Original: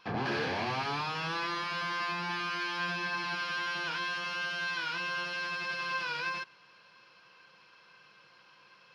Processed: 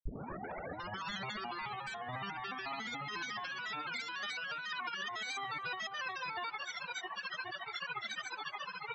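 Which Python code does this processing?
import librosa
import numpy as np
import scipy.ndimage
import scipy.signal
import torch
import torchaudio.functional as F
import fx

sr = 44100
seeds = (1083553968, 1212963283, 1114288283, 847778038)

p1 = fx.tape_start_head(x, sr, length_s=0.72)
p2 = fx.peak_eq(p1, sr, hz=8900.0, db=4.0, octaves=1.3)
p3 = fx.spec_topn(p2, sr, count=32)
p4 = fx.notch(p3, sr, hz=4700.0, q=15.0)
p5 = fx.granulator(p4, sr, seeds[0], grain_ms=100.0, per_s=14.0, spray_ms=100.0, spread_st=7)
p6 = fx.over_compress(p5, sr, threshold_db=-50.0, ratio=-1.0)
p7 = fx.dereverb_blind(p6, sr, rt60_s=1.5)
p8 = p7 + fx.echo_filtered(p7, sr, ms=259, feedback_pct=77, hz=1500.0, wet_db=-16.0, dry=0)
y = p8 * librosa.db_to_amplitude(10.5)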